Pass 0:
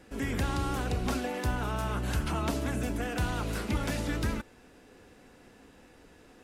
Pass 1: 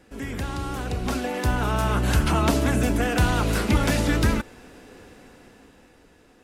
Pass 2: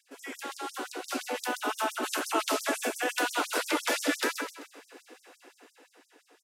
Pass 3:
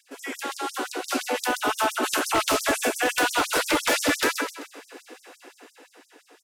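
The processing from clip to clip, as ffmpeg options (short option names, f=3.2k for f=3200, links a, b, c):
-af "dynaudnorm=f=250:g=11:m=10dB"
-filter_complex "[0:a]asplit=2[a][b];[b]aecho=0:1:129|258|387|516:0.501|0.18|0.065|0.0234[c];[a][c]amix=inputs=2:normalize=0,afftfilt=real='re*gte(b*sr/1024,220*pow(5300/220,0.5+0.5*sin(2*PI*5.8*pts/sr)))':imag='im*gte(b*sr/1024,220*pow(5300/220,0.5+0.5*sin(2*PI*5.8*pts/sr)))':win_size=1024:overlap=0.75,volume=-2dB"
-af "aeval=exprs='0.0841*(abs(mod(val(0)/0.0841+3,4)-2)-1)':c=same,volume=7dB"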